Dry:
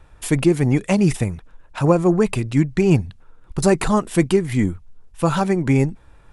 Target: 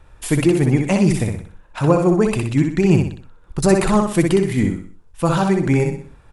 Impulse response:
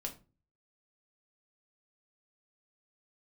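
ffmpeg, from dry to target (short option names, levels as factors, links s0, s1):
-af "aecho=1:1:62|124|186|248|310:0.596|0.232|0.0906|0.0353|0.0138"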